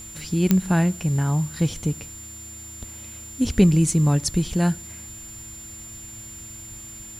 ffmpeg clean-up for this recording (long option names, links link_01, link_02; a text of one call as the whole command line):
ffmpeg -i in.wav -af "adeclick=threshold=4,bandreject=frequency=110.3:width_type=h:width=4,bandreject=frequency=220.6:width_type=h:width=4,bandreject=frequency=330.9:width_type=h:width=4,bandreject=frequency=7200:width=30,afwtdn=0.004" out.wav